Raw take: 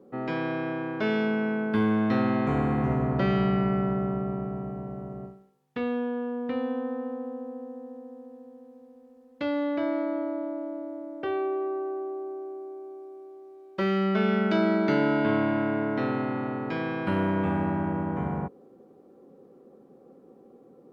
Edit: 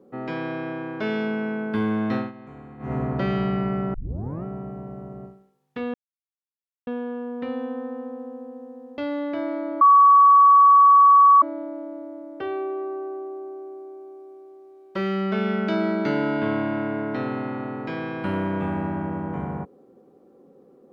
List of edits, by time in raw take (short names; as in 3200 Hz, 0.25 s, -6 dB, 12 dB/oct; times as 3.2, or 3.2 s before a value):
2.15–2.96 dip -17.5 dB, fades 0.17 s
3.94 tape start 0.50 s
5.94 insert silence 0.93 s
8.05–9.42 cut
10.25 add tone 1130 Hz -9.5 dBFS 1.61 s